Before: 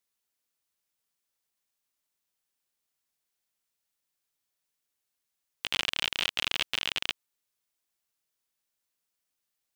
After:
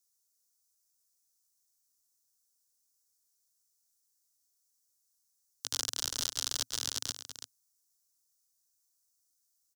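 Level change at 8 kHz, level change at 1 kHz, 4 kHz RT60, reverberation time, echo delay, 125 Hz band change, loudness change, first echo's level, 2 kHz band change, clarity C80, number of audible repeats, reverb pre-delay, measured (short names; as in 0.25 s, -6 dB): +9.5 dB, -8.0 dB, none, none, 0.333 s, -3.0 dB, -4.5 dB, -10.0 dB, -15.5 dB, none, 1, none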